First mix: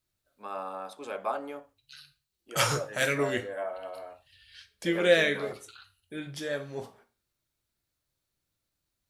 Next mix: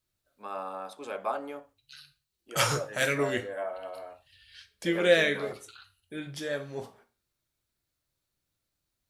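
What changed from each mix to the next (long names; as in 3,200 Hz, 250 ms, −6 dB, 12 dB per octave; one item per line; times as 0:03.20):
nothing changed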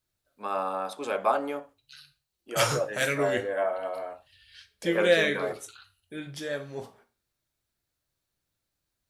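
first voice +7.0 dB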